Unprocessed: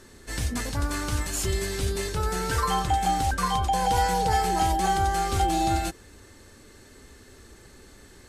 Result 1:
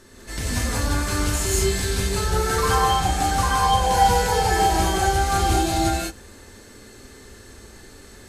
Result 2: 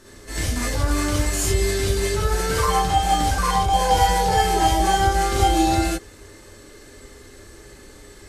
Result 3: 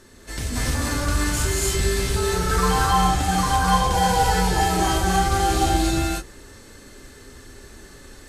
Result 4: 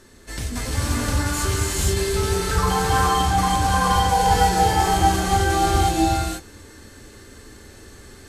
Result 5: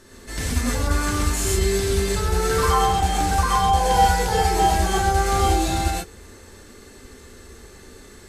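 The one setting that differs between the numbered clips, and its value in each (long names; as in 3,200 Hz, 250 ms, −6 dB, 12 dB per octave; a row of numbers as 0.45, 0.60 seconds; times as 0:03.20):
reverb whose tail is shaped and stops, gate: 220, 90, 330, 510, 150 milliseconds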